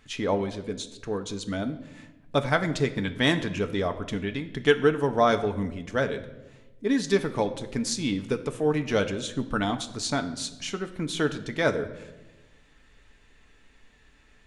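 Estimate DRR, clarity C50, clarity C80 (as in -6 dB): 7.0 dB, 13.0 dB, 15.5 dB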